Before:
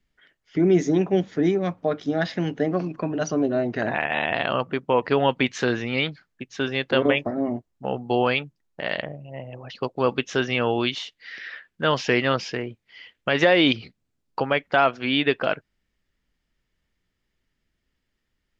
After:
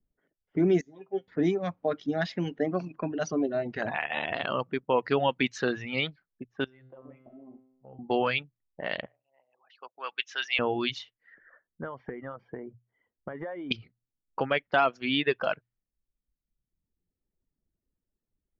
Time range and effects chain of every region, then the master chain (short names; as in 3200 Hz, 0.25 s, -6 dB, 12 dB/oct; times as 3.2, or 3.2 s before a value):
0.81–1.28 high shelf 3600 Hz -10 dB + resonator 130 Hz, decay 0.19 s, mix 90% + upward expander, over -39 dBFS
6.64–7.99 resonator 130 Hz, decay 1.1 s, mix 90% + compressor 3:1, threshold -38 dBFS
9.06–10.59 HPF 1400 Hz + high shelf 3000 Hz +9 dB
11.34–13.71 compressor 8:1, threshold -27 dBFS + polynomial smoothing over 41 samples
whole clip: notches 60/120 Hz; low-pass opened by the level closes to 600 Hz, open at -19.5 dBFS; reverb removal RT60 1.2 s; gain -4 dB